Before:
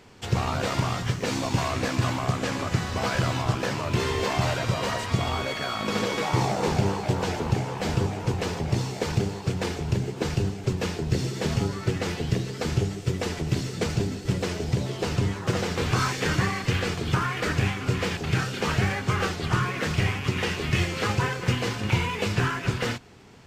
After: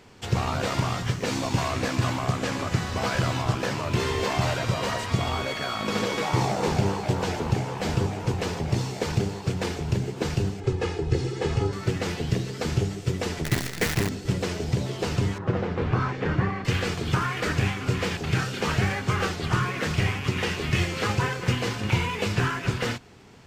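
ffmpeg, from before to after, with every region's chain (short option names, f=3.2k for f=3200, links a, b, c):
-filter_complex "[0:a]asettb=1/sr,asplit=3[a][b][c];[a]atrim=end=10.604[d];[b]atrim=start=10.6:end=11.73,asetpts=PTS-STARTPTS,afade=t=in:d=0.004:c=qsin,afade=t=out:st=1.126:d=0.004:c=qsin,lowpass=f=11k:w=0.5412,lowpass=f=11k:w=1.3066,highshelf=f=3.3k:g=-8.5,aecho=1:1:2.4:0.63,atrim=end_sample=49833[e];[c]atrim=start=11.726[f];[d][e]acrossfade=d=0.004:c1=hsin:c2=qsin[g];[g][f]acrossfade=d=0.004:c1=qsin:c2=hsin,asettb=1/sr,asplit=3[h][i][j];[h]atrim=end=13.444[k];[i]atrim=start=13.44:end=14.09,asetpts=PTS-STARTPTS,afade=t=in:d=0.004:c=qsin,afade=t=out:st=0.646:d=0.004:c=qsin,equalizer=f=1.9k:t=o:w=0.48:g=14,acrusher=bits=5:dc=4:mix=0:aa=0.000001[l];[j]atrim=start=14.086[m];[k][l]acrossfade=d=0.004:c1=hsin:c2=qsin[n];[n][m]acrossfade=d=0.004:c1=qsin:c2=hsin,asettb=1/sr,asplit=3[o][p][q];[o]atrim=end=15.384[r];[p]atrim=start=15.38:end=16.65,asetpts=PTS-STARTPTS,afade=t=in:d=0.004:c=qsin,afade=t=out:st=1.266:d=0.004:c=qsin,lowpass=f=1.7k:p=1,aemphasis=mode=reproduction:type=75fm[s];[q]atrim=start=16.646[t];[r][s]acrossfade=d=0.004:c1=hsin:c2=qsin[u];[u][t]acrossfade=d=0.004:c1=qsin:c2=hsin"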